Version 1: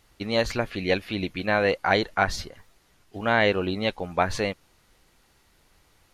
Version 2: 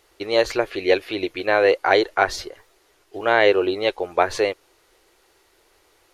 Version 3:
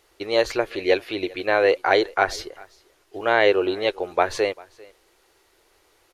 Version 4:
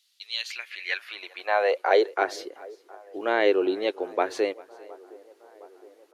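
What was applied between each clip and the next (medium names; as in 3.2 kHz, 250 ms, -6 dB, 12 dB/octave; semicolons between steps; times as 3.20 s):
resonant low shelf 280 Hz -9.5 dB, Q 3; trim +3 dB
delay 395 ms -24 dB; trim -1.5 dB
high-pass sweep 3.7 kHz -> 280 Hz, 0.24–2.37 s; feedback echo behind a band-pass 715 ms, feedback 65%, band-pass 640 Hz, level -22 dB; trim -6.5 dB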